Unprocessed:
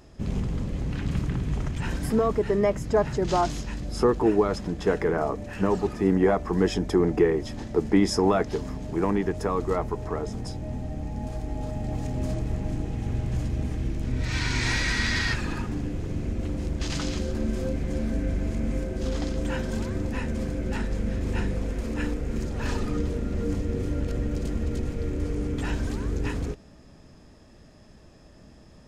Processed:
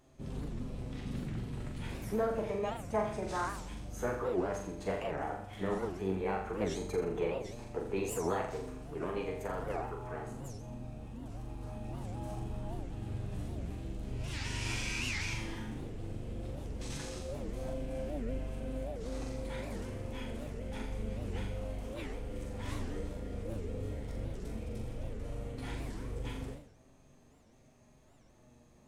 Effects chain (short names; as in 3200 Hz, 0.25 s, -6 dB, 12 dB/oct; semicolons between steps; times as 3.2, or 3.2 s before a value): flange 0.11 Hz, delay 7.5 ms, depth 2.7 ms, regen +45%; formant shift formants +4 st; on a send: flutter echo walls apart 7.2 m, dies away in 0.6 s; on the sum: record warp 78 rpm, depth 250 cents; gain -9 dB